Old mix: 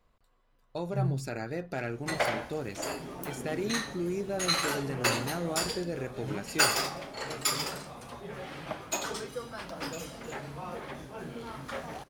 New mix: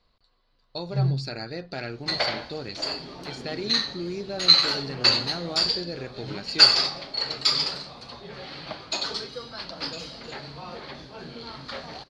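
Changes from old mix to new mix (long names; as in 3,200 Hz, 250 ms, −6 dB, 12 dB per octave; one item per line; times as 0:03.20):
first sound +6.5 dB
master: add low-pass with resonance 4,400 Hz, resonance Q 8.8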